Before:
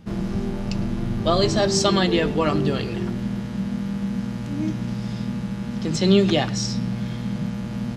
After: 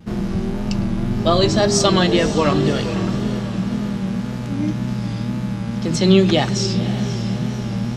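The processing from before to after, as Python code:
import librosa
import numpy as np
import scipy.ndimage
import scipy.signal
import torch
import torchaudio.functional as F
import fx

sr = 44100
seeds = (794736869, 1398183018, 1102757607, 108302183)

y = fx.echo_diffused(x, sr, ms=540, feedback_pct=52, wet_db=-12.0)
y = fx.vibrato(y, sr, rate_hz=1.9, depth_cents=66.0)
y = F.gain(torch.from_numpy(y), 3.5).numpy()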